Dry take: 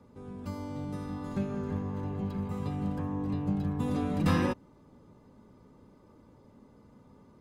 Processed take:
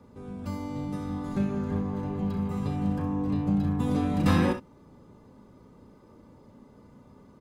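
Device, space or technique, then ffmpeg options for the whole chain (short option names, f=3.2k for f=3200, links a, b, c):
slapback doubling: -filter_complex "[0:a]asplit=3[a][b][c];[b]adelay=35,volume=-9dB[d];[c]adelay=65,volume=-11dB[e];[a][d][e]amix=inputs=3:normalize=0,volume=3dB"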